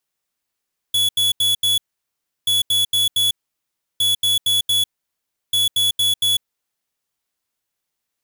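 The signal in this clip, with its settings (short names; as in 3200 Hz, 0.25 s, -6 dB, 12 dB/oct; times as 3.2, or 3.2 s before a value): beep pattern square 3400 Hz, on 0.15 s, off 0.08 s, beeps 4, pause 0.69 s, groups 4, -17 dBFS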